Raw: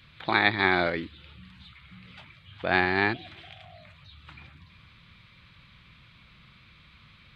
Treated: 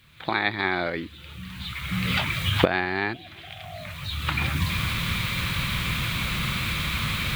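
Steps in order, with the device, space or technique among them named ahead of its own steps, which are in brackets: cheap recorder with automatic gain (white noise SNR 36 dB; recorder AGC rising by 21 dB/s); gain -2.5 dB

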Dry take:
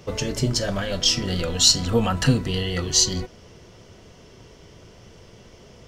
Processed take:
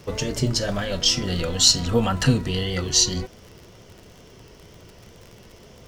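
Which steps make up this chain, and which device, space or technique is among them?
vinyl LP (wow and flutter; crackle 51/s -35 dBFS; pink noise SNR 38 dB)

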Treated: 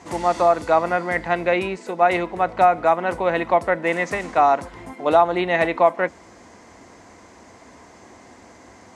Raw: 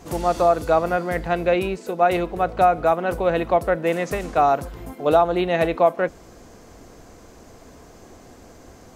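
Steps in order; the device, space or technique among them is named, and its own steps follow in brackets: car door speaker (speaker cabinet 95–9500 Hz, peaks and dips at 140 Hz -9 dB, 450 Hz -4 dB, 950 Hz +7 dB, 2000 Hz +9 dB)

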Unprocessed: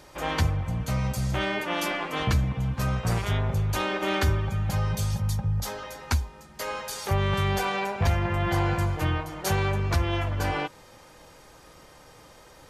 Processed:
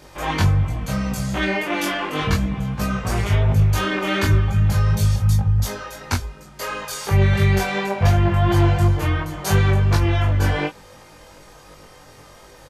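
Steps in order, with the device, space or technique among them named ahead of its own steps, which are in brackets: double-tracked vocal (doubler 20 ms -3 dB; chorus 2.8 Hz, delay 19.5 ms, depth 2.4 ms); gain +6.5 dB

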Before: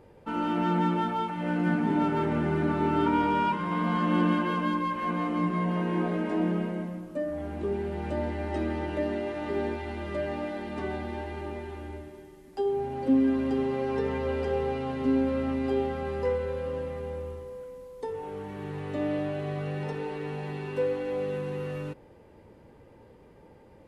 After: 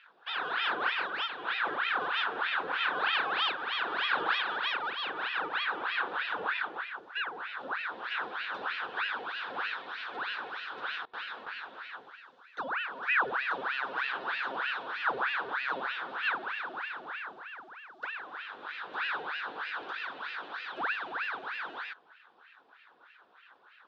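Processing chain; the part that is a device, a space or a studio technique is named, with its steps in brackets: voice changer toy (ring modulator with a swept carrier 1200 Hz, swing 90%, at 3.2 Hz; speaker cabinet 540–4800 Hz, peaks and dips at 620 Hz -8 dB, 1500 Hz +7 dB, 2100 Hz -9 dB, 3600 Hz +8 dB); 11.05–11.62 gate with hold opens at -32 dBFS; gain -1.5 dB

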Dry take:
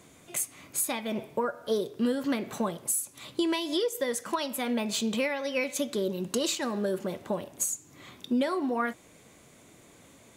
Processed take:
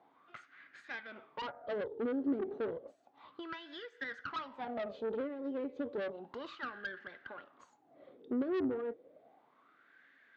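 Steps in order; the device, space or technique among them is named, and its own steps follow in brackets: wah-wah guitar rig (wah 0.32 Hz 380–1700 Hz, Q 9.8; tube stage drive 44 dB, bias 0.5; speaker cabinet 100–4400 Hz, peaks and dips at 270 Hz +6 dB, 590 Hz -4 dB, 1000 Hz -8 dB, 2400 Hz -5 dB); gain +12.5 dB

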